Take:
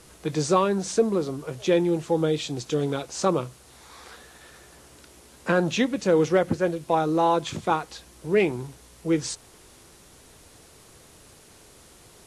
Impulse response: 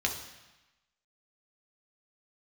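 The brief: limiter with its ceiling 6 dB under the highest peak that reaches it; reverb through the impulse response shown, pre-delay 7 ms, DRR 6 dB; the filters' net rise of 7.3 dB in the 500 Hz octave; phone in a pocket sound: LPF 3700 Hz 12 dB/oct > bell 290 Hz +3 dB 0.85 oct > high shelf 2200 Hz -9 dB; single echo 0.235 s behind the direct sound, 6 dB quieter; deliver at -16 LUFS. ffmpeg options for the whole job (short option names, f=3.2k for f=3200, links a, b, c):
-filter_complex "[0:a]equalizer=f=500:t=o:g=8,alimiter=limit=-9.5dB:level=0:latency=1,aecho=1:1:235:0.501,asplit=2[a][b];[1:a]atrim=start_sample=2205,adelay=7[c];[b][c]afir=irnorm=-1:irlink=0,volume=-13dB[d];[a][d]amix=inputs=2:normalize=0,lowpass=3.7k,equalizer=f=290:t=o:w=0.85:g=3,highshelf=f=2.2k:g=-9,volume=3.5dB"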